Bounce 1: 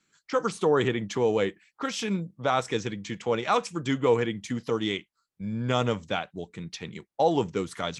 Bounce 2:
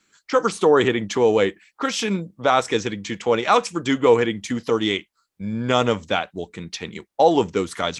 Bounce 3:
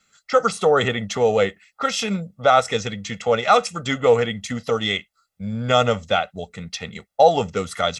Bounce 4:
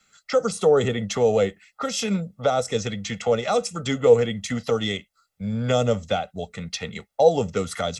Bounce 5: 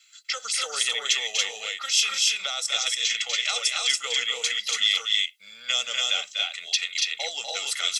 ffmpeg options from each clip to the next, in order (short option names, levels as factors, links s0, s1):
-af "equalizer=f=140:w=2:g=-8.5,volume=2.37"
-af "aecho=1:1:1.5:0.8,volume=0.891"
-filter_complex "[0:a]acrossover=split=230|580|4800[s0][s1][s2][s3];[s2]acompressor=threshold=0.0282:ratio=6[s4];[s0][s1][s4][s3]amix=inputs=4:normalize=0,flanger=delay=1.2:depth=1.2:regen=88:speed=0.64:shape=triangular,volume=1.88"
-af "highpass=f=2800:t=q:w=1.6,aecho=1:1:244.9|282.8:0.501|0.794,volume=1.78"